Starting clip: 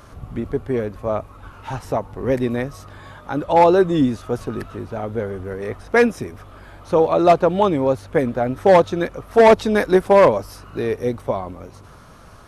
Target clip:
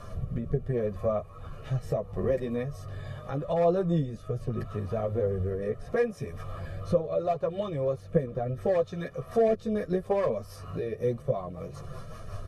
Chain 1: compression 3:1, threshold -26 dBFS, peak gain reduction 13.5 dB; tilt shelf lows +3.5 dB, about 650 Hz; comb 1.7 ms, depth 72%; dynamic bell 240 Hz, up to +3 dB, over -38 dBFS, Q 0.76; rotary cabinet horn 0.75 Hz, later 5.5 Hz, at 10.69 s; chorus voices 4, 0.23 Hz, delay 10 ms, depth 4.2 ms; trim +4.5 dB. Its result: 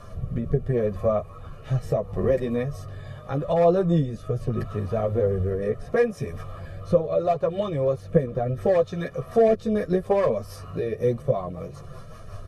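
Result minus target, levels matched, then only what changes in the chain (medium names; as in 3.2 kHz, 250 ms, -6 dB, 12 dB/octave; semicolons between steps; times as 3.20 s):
compression: peak gain reduction -5.5 dB
change: compression 3:1, threshold -34 dBFS, peak gain reduction 19 dB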